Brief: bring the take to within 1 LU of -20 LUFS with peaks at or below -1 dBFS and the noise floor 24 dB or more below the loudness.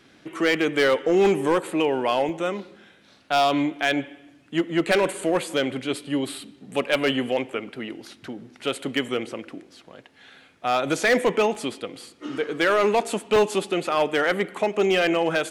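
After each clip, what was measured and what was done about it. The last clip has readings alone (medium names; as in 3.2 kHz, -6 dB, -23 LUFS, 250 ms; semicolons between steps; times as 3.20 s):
clipped samples 0.9%; clipping level -13.5 dBFS; dropouts 3; longest dropout 1.5 ms; loudness -23.5 LUFS; peak level -13.5 dBFS; loudness target -20.0 LUFS
-> clip repair -13.5 dBFS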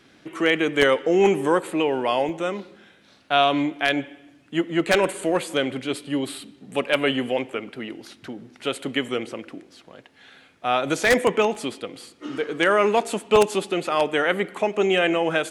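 clipped samples 0.0%; dropouts 3; longest dropout 1.5 ms
-> interpolate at 2.29/11.55/13.36 s, 1.5 ms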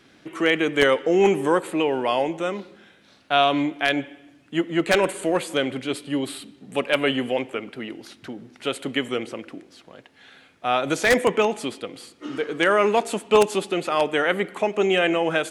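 dropouts 0; loudness -22.5 LUFS; peak level -4.5 dBFS; loudness target -20.0 LUFS
-> trim +2.5 dB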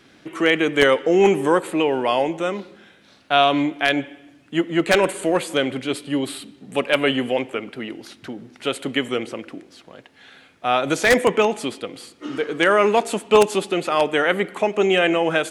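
loudness -20.0 LUFS; peak level -2.0 dBFS; noise floor -53 dBFS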